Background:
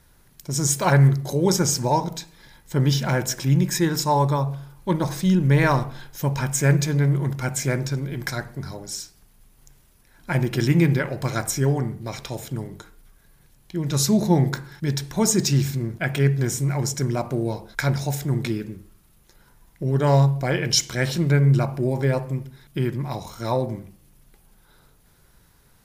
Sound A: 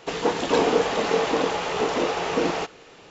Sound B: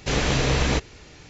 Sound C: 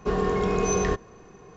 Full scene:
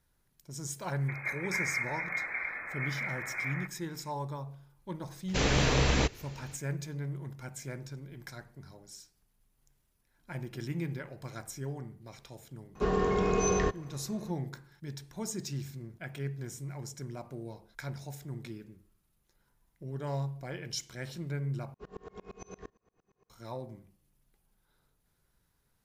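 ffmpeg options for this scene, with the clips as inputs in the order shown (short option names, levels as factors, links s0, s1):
-filter_complex "[3:a]asplit=2[s0][s1];[0:a]volume=0.133[s2];[1:a]lowpass=f=2200:t=q:w=0.5098,lowpass=f=2200:t=q:w=0.6013,lowpass=f=2200:t=q:w=0.9,lowpass=f=2200:t=q:w=2.563,afreqshift=-2600[s3];[s1]aeval=exprs='val(0)*pow(10,-31*if(lt(mod(-8.7*n/s,1),2*abs(-8.7)/1000),1-mod(-8.7*n/s,1)/(2*abs(-8.7)/1000),(mod(-8.7*n/s,1)-2*abs(-8.7)/1000)/(1-2*abs(-8.7)/1000))/20)':c=same[s4];[s2]asplit=2[s5][s6];[s5]atrim=end=21.744[s7];[s4]atrim=end=1.56,asetpts=PTS-STARTPTS,volume=0.168[s8];[s6]atrim=start=23.296[s9];[s3]atrim=end=3.1,asetpts=PTS-STARTPTS,volume=0.224,afade=t=in:d=0.004:c=hsin,afade=t=out:st=3.096:d=0.004:c=hsin,adelay=1010[s10];[2:a]atrim=end=1.29,asetpts=PTS-STARTPTS,volume=0.596,afade=t=in:d=0.004:c=hsin,afade=t=out:st=1.286:d=0.004:c=hsin,adelay=5280[s11];[s0]atrim=end=1.56,asetpts=PTS-STARTPTS,volume=0.668,afade=t=in:d=0.004:c=hsin,afade=t=out:st=1.556:d=0.004:c=hsin,adelay=12750[s12];[s7][s8]acrossfade=d=0.004:c1=hsin:c2=hsin[s13];[s13][s9]acrossfade=d=0.004:c1=hsin:c2=hsin[s14];[s14][s10][s11][s12]amix=inputs=4:normalize=0"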